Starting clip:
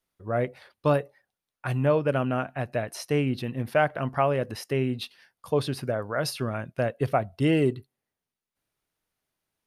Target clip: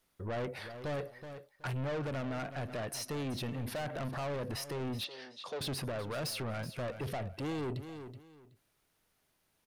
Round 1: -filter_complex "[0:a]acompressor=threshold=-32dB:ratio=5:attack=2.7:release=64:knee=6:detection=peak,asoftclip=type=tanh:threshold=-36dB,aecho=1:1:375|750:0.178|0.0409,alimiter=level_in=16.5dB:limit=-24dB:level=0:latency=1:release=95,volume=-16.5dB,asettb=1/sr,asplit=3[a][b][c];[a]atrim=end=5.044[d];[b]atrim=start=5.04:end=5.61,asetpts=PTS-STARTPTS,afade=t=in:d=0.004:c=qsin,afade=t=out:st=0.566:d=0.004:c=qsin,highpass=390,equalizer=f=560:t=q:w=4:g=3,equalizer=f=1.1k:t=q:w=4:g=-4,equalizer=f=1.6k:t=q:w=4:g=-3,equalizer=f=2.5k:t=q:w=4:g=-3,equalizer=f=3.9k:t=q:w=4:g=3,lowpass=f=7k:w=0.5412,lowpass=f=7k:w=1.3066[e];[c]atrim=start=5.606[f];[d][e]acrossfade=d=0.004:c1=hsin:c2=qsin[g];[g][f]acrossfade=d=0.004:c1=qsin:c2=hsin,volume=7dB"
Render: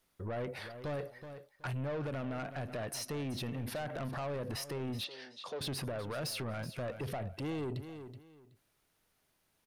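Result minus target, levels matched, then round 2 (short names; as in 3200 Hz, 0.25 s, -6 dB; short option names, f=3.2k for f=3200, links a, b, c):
compressor: peak gain reduction +5.5 dB
-filter_complex "[0:a]acompressor=threshold=-25dB:ratio=5:attack=2.7:release=64:knee=6:detection=peak,asoftclip=type=tanh:threshold=-36dB,aecho=1:1:375|750:0.178|0.0409,alimiter=level_in=16.5dB:limit=-24dB:level=0:latency=1:release=95,volume=-16.5dB,asettb=1/sr,asplit=3[a][b][c];[a]atrim=end=5.044[d];[b]atrim=start=5.04:end=5.61,asetpts=PTS-STARTPTS,afade=t=in:d=0.004:c=qsin,afade=t=out:st=0.566:d=0.004:c=qsin,highpass=390,equalizer=f=560:t=q:w=4:g=3,equalizer=f=1.1k:t=q:w=4:g=-4,equalizer=f=1.6k:t=q:w=4:g=-3,equalizer=f=2.5k:t=q:w=4:g=-3,equalizer=f=3.9k:t=q:w=4:g=3,lowpass=f=7k:w=0.5412,lowpass=f=7k:w=1.3066[e];[c]atrim=start=5.606[f];[d][e]acrossfade=d=0.004:c1=hsin:c2=qsin[g];[g][f]acrossfade=d=0.004:c1=qsin:c2=hsin,volume=7dB"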